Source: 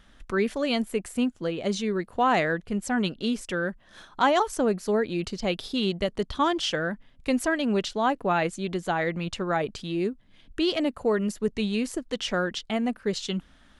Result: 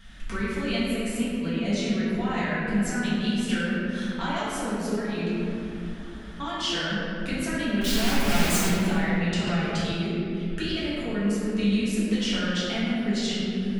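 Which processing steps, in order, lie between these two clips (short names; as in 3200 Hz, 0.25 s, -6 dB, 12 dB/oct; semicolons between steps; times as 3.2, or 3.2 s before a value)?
7.81–8.68 infinite clipping; compressor 6:1, threshold -34 dBFS, peak gain reduction 16 dB; band shelf 590 Hz -8 dB 2.4 oct; 5.27–6.4 room tone; reverb RT60 3.0 s, pre-delay 4 ms, DRR -10.5 dB; 9.47–9.92 three-band squash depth 70%; gain +2 dB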